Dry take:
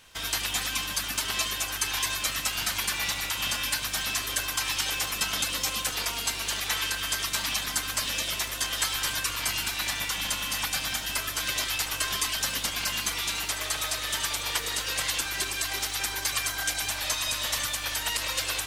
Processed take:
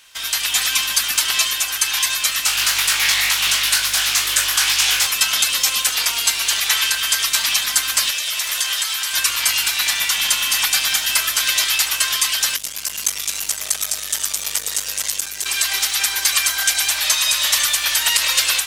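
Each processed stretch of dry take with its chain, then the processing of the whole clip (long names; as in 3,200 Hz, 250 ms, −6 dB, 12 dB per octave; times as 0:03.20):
0:02.45–0:05.07: flutter between parallel walls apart 3.5 metres, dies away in 0.25 s + highs frequency-modulated by the lows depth 0.45 ms
0:08.10–0:09.14: mains-hum notches 60/120/180/240/300/360/420 Hz + downward compressor, threshold −30 dBFS + low-shelf EQ 320 Hz −8 dB
0:12.56–0:15.46: flat-topped bell 1,900 Hz −8.5 dB 2.8 octaves + saturating transformer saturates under 1,900 Hz
whole clip: tilt shelving filter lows −9 dB, about 750 Hz; automatic gain control; level −1 dB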